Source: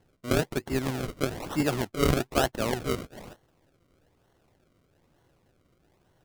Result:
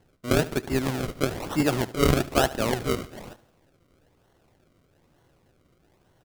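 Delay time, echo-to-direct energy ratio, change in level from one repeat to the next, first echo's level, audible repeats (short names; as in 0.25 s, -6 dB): 73 ms, -16.5 dB, -6.0 dB, -17.5 dB, 3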